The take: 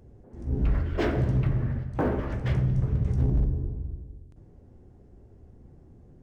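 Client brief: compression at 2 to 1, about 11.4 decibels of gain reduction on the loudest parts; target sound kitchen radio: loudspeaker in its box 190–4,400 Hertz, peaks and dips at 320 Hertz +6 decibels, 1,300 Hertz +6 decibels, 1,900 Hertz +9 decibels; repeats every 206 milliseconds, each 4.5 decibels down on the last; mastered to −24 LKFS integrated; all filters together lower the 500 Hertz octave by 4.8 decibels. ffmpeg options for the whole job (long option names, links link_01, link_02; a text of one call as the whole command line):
ffmpeg -i in.wav -af "equalizer=frequency=500:width_type=o:gain=-9,acompressor=threshold=-42dB:ratio=2,highpass=190,equalizer=frequency=320:width_type=q:width=4:gain=6,equalizer=frequency=1300:width_type=q:width=4:gain=6,equalizer=frequency=1900:width_type=q:width=4:gain=9,lowpass=frequency=4400:width=0.5412,lowpass=frequency=4400:width=1.3066,aecho=1:1:206|412|618|824|1030|1236|1442|1648|1854:0.596|0.357|0.214|0.129|0.0772|0.0463|0.0278|0.0167|0.01,volume=18dB" out.wav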